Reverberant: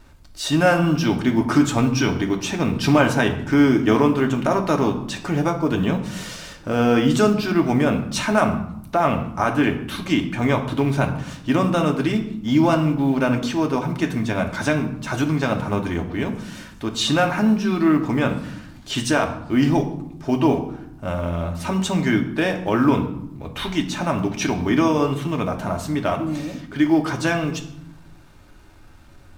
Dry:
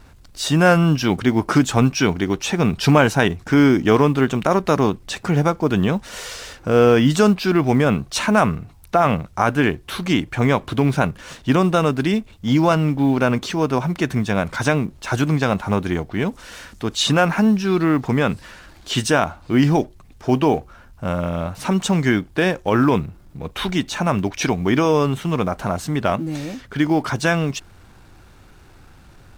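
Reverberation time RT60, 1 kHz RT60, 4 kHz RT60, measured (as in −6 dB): 0.80 s, 0.75 s, 0.55 s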